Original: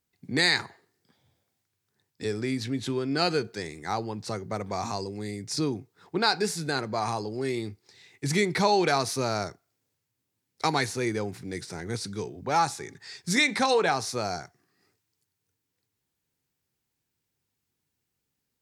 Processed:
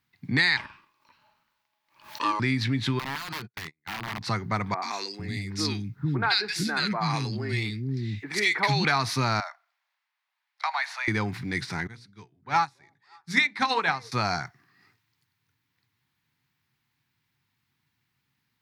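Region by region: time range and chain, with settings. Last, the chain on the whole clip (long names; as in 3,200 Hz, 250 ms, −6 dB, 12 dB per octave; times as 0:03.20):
0:00.57–0:02.40: ring modulation 740 Hz + background raised ahead of every attack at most 130 dB per second
0:02.99–0:04.21: noise gate −36 dBFS, range −45 dB + downward compressor 10 to 1, threshold −35 dBFS + wrap-around overflow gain 34.5 dB
0:04.74–0:08.85: parametric band 930 Hz −7 dB 1.1 octaves + three-band delay without the direct sound mids, highs, lows 80/450 ms, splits 310/1,600 Hz
0:09.40–0:11.08: Butterworth high-pass 580 Hz 96 dB per octave + high-shelf EQ 4,700 Hz −11.5 dB + downward compressor 2 to 1, threshold −39 dBFS
0:11.87–0:14.12: mains-hum notches 60/120/180/240/300/360/420/480/540/600 Hz + echo through a band-pass that steps 279 ms, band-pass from 430 Hz, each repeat 1.4 octaves, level −10.5 dB + expander for the loud parts 2.5 to 1, over −38 dBFS
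whole clip: octave-band graphic EQ 125/250/500/1,000/2,000/4,000/8,000 Hz +11/+5/−8/+9/+9/+6/−7 dB; downward compressor 5 to 1, threshold −20 dBFS; low-shelf EQ 440 Hz −3 dB; level +1 dB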